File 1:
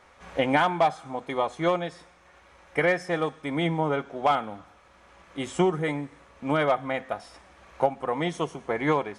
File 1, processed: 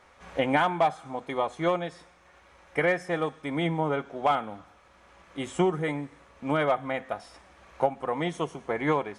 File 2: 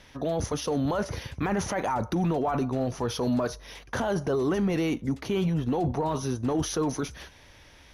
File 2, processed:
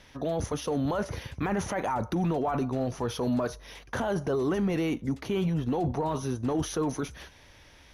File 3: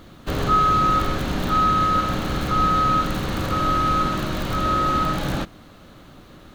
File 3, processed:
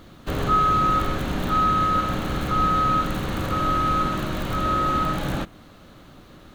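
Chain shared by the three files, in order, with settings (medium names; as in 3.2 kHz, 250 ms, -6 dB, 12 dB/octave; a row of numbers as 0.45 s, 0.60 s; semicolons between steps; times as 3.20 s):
dynamic bell 5 kHz, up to -5 dB, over -49 dBFS, Q 2; trim -1.5 dB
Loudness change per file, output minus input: -1.5 LU, -1.5 LU, -1.5 LU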